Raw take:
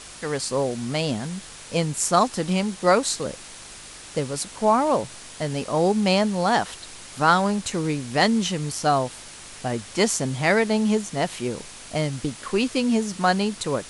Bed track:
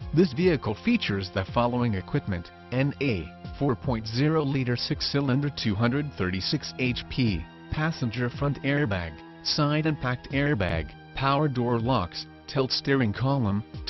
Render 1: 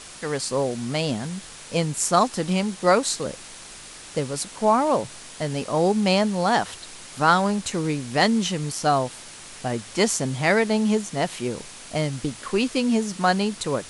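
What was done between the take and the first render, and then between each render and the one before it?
hum removal 50 Hz, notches 2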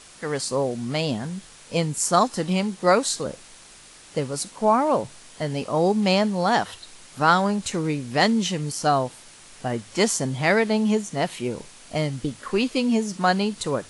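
noise reduction from a noise print 6 dB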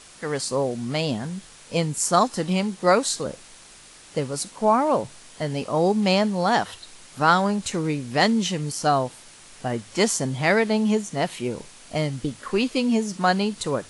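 no processing that can be heard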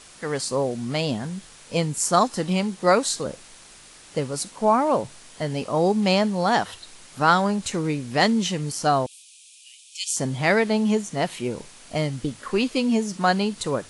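0:09.06–0:10.17: Chebyshev high-pass with heavy ripple 2,400 Hz, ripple 3 dB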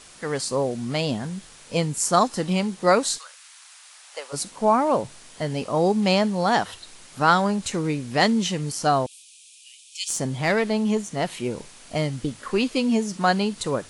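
0:03.17–0:04.32: high-pass filter 1,300 Hz → 590 Hz 24 dB per octave
0:10.08–0:11.28: tube saturation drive 13 dB, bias 0.3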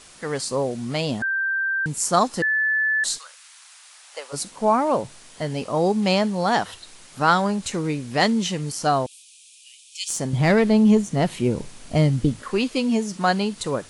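0:01.22–0:01.86: beep over 1,570 Hz −20.5 dBFS
0:02.42–0:03.04: beep over 1,740 Hz −18 dBFS
0:10.33–0:12.43: low-shelf EQ 350 Hz +11 dB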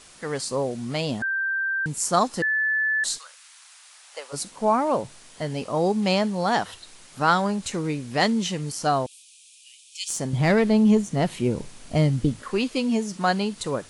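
level −2 dB

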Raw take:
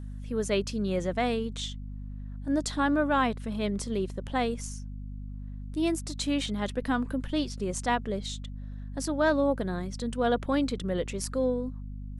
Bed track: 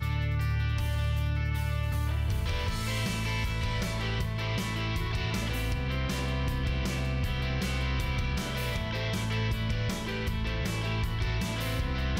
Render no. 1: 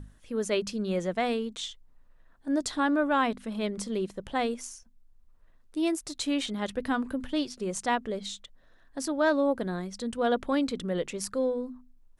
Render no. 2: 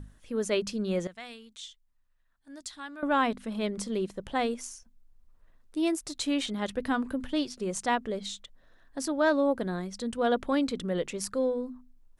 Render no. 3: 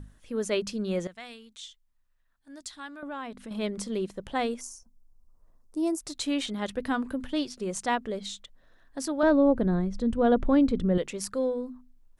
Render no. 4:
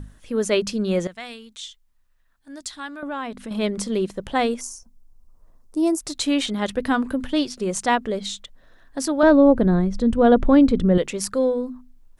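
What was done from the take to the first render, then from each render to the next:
mains-hum notches 50/100/150/200/250 Hz
0:01.07–0:03.03: guitar amp tone stack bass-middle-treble 5-5-5
0:02.87–0:03.51: downward compressor 2.5 to 1, threshold −39 dBFS; 0:04.61–0:06.00: flat-topped bell 2,400 Hz −13 dB; 0:09.23–0:10.98: spectral tilt −3.5 dB per octave
level +7.5 dB

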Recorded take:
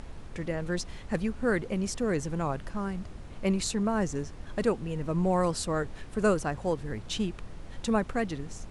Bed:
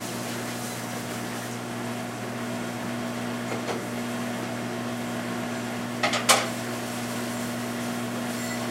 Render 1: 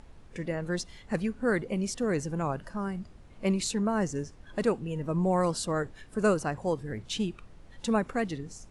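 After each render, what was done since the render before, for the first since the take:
noise reduction from a noise print 9 dB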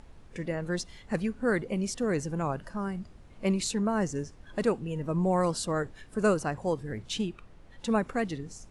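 0:07.21–0:07.90: bass and treble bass −2 dB, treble −4 dB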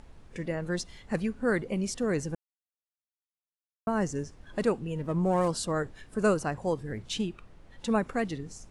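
0:02.35–0:03.87: silence
0:04.97–0:05.48: windowed peak hold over 5 samples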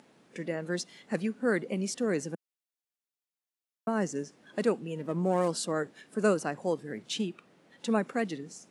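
high-pass filter 180 Hz 24 dB per octave
parametric band 1,000 Hz −3.5 dB 0.77 octaves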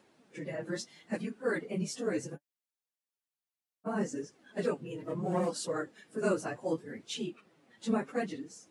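random phases in long frames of 50 ms
flanger 0.7 Hz, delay 1.8 ms, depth 7.9 ms, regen +42%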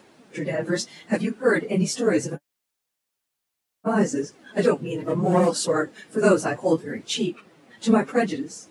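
level +12 dB

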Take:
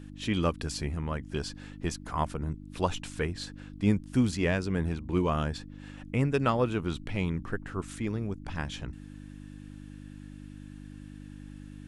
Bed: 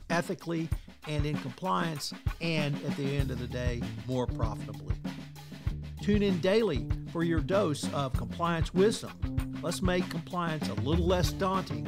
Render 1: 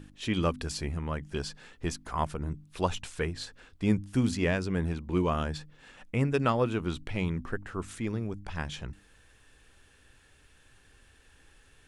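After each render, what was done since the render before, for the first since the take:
hum removal 50 Hz, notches 6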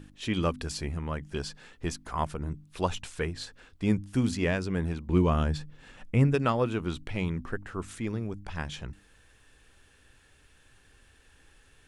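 0:05.09–0:06.35: low-shelf EQ 240 Hz +8 dB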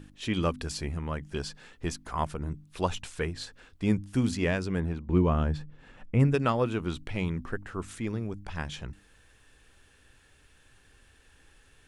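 0:04.80–0:06.20: high-shelf EQ 3,100 Hz −11 dB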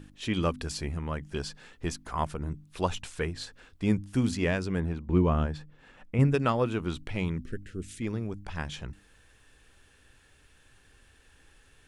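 0:05.46–0:06.19: low-shelf EQ 260 Hz −7 dB
0:07.38–0:08.02: Butterworth band-reject 930 Hz, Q 0.52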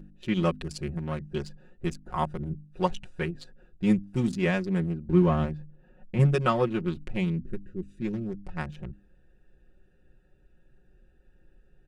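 adaptive Wiener filter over 41 samples
comb filter 5.5 ms, depth 91%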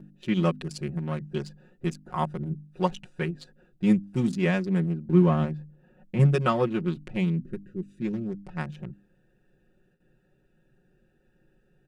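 noise gate with hold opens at −54 dBFS
low shelf with overshoot 100 Hz −10.5 dB, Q 1.5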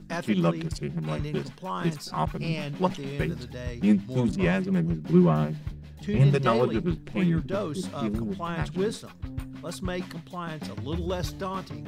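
mix in bed −3 dB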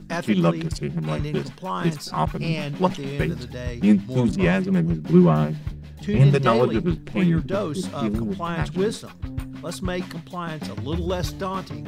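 level +4.5 dB

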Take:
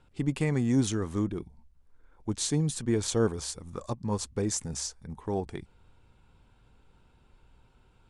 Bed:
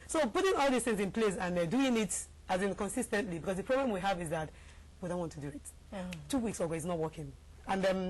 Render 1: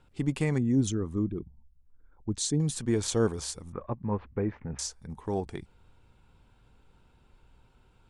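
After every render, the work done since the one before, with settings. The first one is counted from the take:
0:00.58–0:02.60: spectral envelope exaggerated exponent 1.5
0:03.72–0:04.79: Butterworth low-pass 2,400 Hz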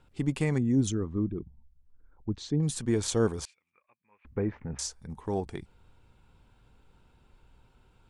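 0:01.05–0:02.63: high-frequency loss of the air 230 metres
0:03.45–0:04.25: resonant band-pass 2,400 Hz, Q 12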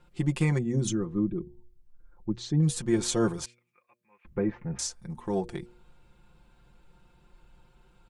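comb filter 5.7 ms, depth 79%
hum removal 119.6 Hz, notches 5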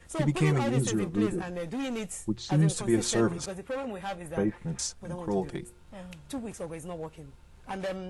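mix in bed −3 dB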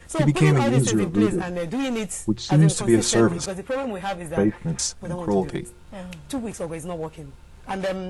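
level +7.5 dB

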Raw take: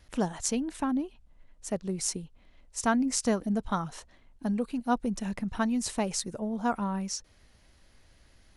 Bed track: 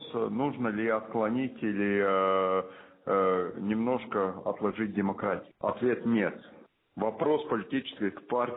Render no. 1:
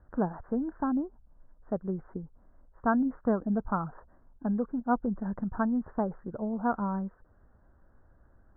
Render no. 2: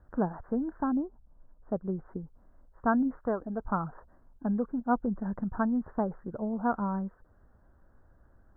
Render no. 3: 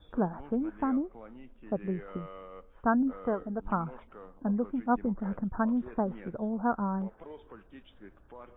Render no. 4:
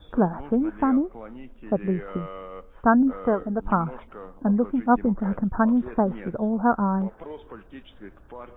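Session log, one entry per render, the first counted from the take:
Butterworth low-pass 1,600 Hz 72 dB per octave
0:00.93–0:02.06: low-pass filter 1,500 Hz; 0:03.19–0:03.66: parametric band 180 Hz −9 dB 1.2 octaves
mix in bed track −20 dB
level +8 dB

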